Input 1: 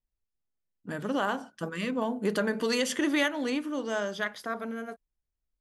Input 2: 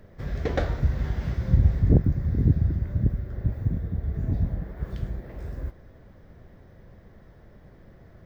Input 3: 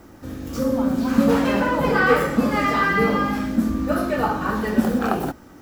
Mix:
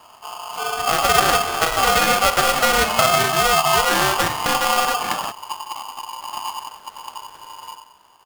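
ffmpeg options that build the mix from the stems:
-filter_complex "[0:a]lowshelf=f=700:t=q:w=1.5:g=12.5,volume=1.41[s0];[1:a]adelay=2050,volume=0.501,asplit=2[s1][s2];[s2]volume=0.531[s3];[2:a]lowshelf=f=190:g=11.5,volume=0.422[s4];[s0][s1]amix=inputs=2:normalize=0,acrusher=samples=31:mix=1:aa=0.000001,acompressor=threshold=0.2:ratio=10,volume=1[s5];[s3]aecho=0:1:91|182|273|364|455:1|0.37|0.137|0.0507|0.0187[s6];[s4][s5][s6]amix=inputs=3:normalize=0,aeval=exprs='val(0)*sgn(sin(2*PI*970*n/s))':c=same"

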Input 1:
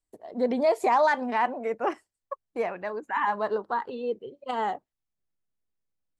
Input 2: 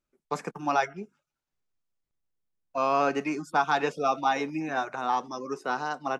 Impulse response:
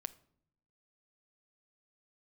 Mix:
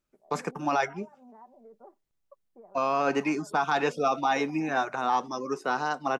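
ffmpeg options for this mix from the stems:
-filter_complex "[0:a]lowpass=f=1000:w=0.5412,lowpass=f=1000:w=1.3066,aecho=1:1:5.1:0.56,acompressor=threshold=0.0282:ratio=6,volume=0.133[s0];[1:a]volume=1.33[s1];[s0][s1]amix=inputs=2:normalize=0,alimiter=limit=0.168:level=0:latency=1:release=13"

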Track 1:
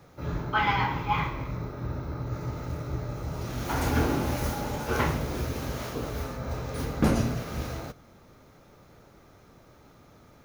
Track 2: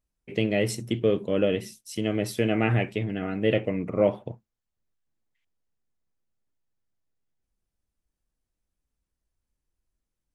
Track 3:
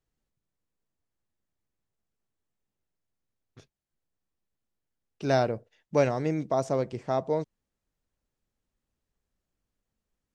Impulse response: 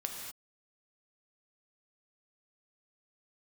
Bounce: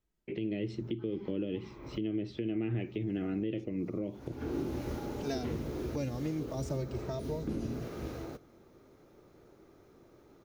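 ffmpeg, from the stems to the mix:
-filter_complex "[0:a]acrossover=split=4900[s0][s1];[s1]acompressor=threshold=0.00398:ratio=4:attack=1:release=60[s2];[s0][s2]amix=inputs=2:normalize=0,equalizer=f=360:t=o:w=0.89:g=12,adelay=450,volume=0.335[s3];[1:a]acompressor=threshold=0.0631:ratio=2.5,lowpass=f=3800:w=0.5412,lowpass=f=3800:w=1.3066,equalizer=f=340:w=2.9:g=11.5,volume=0.708,asplit=2[s4][s5];[2:a]asplit=2[s6][s7];[s7]adelay=2.7,afreqshift=0.42[s8];[s6][s8]amix=inputs=2:normalize=1,volume=0.944[s9];[s5]apad=whole_len=480648[s10];[s3][s10]sidechaincompress=threshold=0.0112:ratio=16:attack=20:release=404[s11];[s11][s4][s9]amix=inputs=3:normalize=0,acrossover=split=350|3000[s12][s13][s14];[s13]acompressor=threshold=0.00891:ratio=6[s15];[s12][s15][s14]amix=inputs=3:normalize=0,alimiter=level_in=1.12:limit=0.0631:level=0:latency=1:release=288,volume=0.891"

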